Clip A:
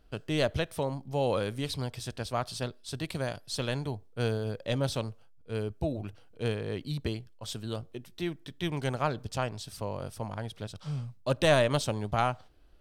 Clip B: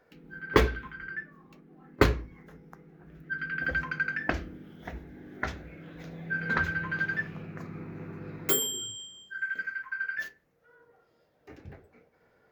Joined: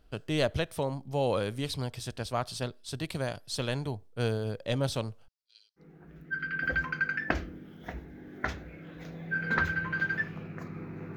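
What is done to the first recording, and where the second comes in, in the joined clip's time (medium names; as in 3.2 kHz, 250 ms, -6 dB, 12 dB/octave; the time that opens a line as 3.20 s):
clip A
5.28–5.84 s: Butterworth band-pass 4.8 kHz, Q 2.7
5.80 s: go over to clip B from 2.79 s, crossfade 0.08 s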